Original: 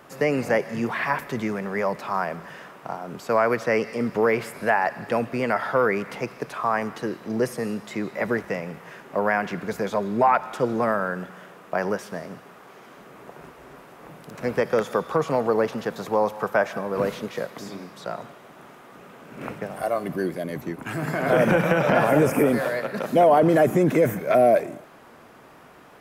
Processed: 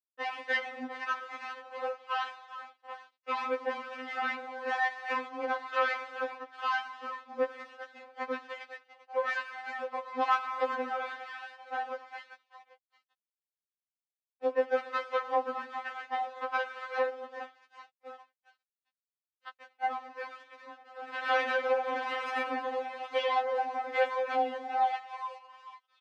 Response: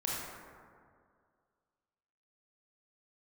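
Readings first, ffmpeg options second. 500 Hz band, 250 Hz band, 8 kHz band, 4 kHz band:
-12.5 dB, -21.5 dB, under -15 dB, -2.0 dB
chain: -filter_complex "[0:a]aeval=exprs='0.422*(cos(1*acos(clip(val(0)/0.422,-1,1)))-cos(1*PI/2))+0.0376*(cos(3*acos(clip(val(0)/0.422,-1,1)))-cos(3*PI/2))+0.0422*(cos(7*acos(clip(val(0)/0.422,-1,1)))-cos(7*PI/2))':c=same,asplit=2[a][b];[1:a]atrim=start_sample=2205,afade=t=out:st=0.39:d=0.01,atrim=end_sample=17640[c];[b][c]afir=irnorm=-1:irlink=0,volume=-16dB[d];[a][d]amix=inputs=2:normalize=0,acontrast=66,asplit=5[e][f][g][h][i];[f]adelay=398,afreqshift=140,volume=-12.5dB[j];[g]adelay=796,afreqshift=280,volume=-20.5dB[k];[h]adelay=1194,afreqshift=420,volume=-28.4dB[l];[i]adelay=1592,afreqshift=560,volume=-36.4dB[m];[e][j][k][l][m]amix=inputs=5:normalize=0,acrossover=split=1100[n][o];[n]aeval=exprs='val(0)*(1-0.7/2+0.7/2*cos(2*PI*1.1*n/s))':c=same[p];[o]aeval=exprs='val(0)*(1-0.7/2-0.7/2*cos(2*PI*1.1*n/s))':c=same[q];[p][q]amix=inputs=2:normalize=0,afreqshift=19,aemphasis=mode=reproduction:type=50kf,acompressor=threshold=-21dB:ratio=6,aeval=exprs='sgn(val(0))*max(abs(val(0))-0.00422,0)':c=same,highpass=610,lowpass=4.4k,afftfilt=real='re*3.46*eq(mod(b,12),0)':imag='im*3.46*eq(mod(b,12),0)':win_size=2048:overlap=0.75"

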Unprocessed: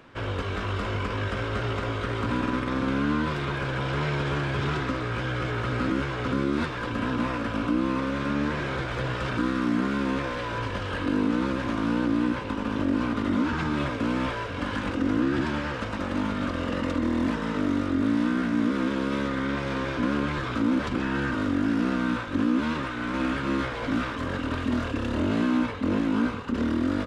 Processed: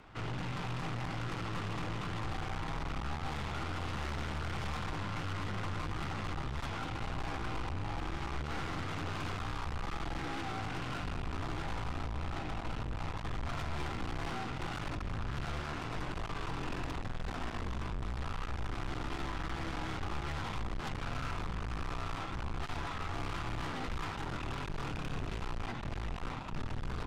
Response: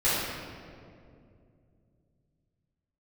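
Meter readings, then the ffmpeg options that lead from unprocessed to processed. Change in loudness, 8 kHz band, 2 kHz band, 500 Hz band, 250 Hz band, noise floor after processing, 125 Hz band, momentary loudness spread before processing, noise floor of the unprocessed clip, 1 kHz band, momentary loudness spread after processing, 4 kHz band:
-12.0 dB, n/a, -11.0 dB, -14.0 dB, -19.0 dB, -41 dBFS, -7.5 dB, 5 LU, -32 dBFS, -8.0 dB, 2 LU, -7.5 dB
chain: -af "afreqshift=-220,aeval=exprs='(tanh(63.1*val(0)+0.7)-tanh(0.7))/63.1':c=same"

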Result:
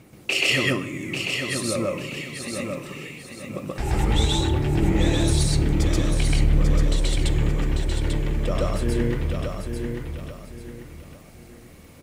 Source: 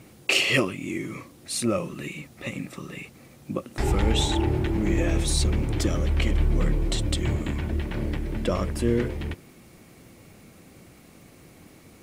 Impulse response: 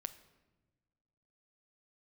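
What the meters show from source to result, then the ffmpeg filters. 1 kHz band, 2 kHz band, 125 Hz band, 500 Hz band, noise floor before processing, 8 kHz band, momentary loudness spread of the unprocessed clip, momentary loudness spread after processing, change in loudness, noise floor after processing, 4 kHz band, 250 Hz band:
+1.5 dB, +2.5 dB, +3.5 dB, +1.5 dB, -52 dBFS, +2.0 dB, 13 LU, 15 LU, +2.5 dB, -47 dBFS, +2.5 dB, +2.0 dB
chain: -filter_complex "[0:a]aphaser=in_gain=1:out_gain=1:delay=2.6:decay=0.27:speed=0.2:type=triangular,aecho=1:1:843|1686|2529|3372:0.501|0.165|0.0546|0.018,asplit=2[a][b];[1:a]atrim=start_sample=2205,adelay=130[c];[b][c]afir=irnorm=-1:irlink=0,volume=4.5dB[d];[a][d]amix=inputs=2:normalize=0,volume=-3.5dB"

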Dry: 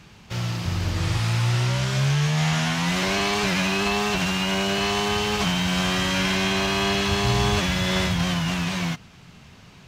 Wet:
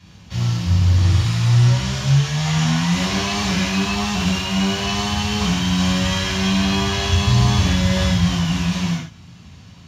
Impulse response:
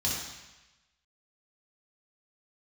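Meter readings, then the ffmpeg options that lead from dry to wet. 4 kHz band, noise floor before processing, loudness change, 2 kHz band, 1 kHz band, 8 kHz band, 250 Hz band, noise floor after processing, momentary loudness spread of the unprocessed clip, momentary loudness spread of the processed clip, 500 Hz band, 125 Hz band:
+2.0 dB, -48 dBFS, +4.0 dB, -0.5 dB, +0.5 dB, +3.5 dB, +5.5 dB, -43 dBFS, 5 LU, 5 LU, -1.5 dB, +7.5 dB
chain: -filter_complex "[1:a]atrim=start_sample=2205,atrim=end_sample=6615[a];[0:a][a]afir=irnorm=-1:irlink=0,volume=-7dB"

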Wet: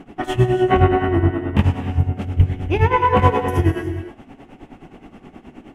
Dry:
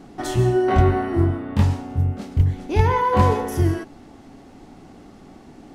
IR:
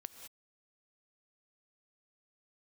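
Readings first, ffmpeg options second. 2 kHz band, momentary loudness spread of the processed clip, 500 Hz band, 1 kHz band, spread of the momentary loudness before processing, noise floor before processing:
+5.0 dB, 10 LU, +2.5 dB, +3.5 dB, 6 LU, -46 dBFS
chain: -filter_complex "[0:a]highshelf=f=3.5k:t=q:w=3:g=-6.5,tremolo=f=9.5:d=0.87,asplit=2[a][b];[1:a]atrim=start_sample=2205,asetrate=30429,aresample=44100[c];[b][c]afir=irnorm=-1:irlink=0,volume=10dB[d];[a][d]amix=inputs=2:normalize=0,volume=-4dB"

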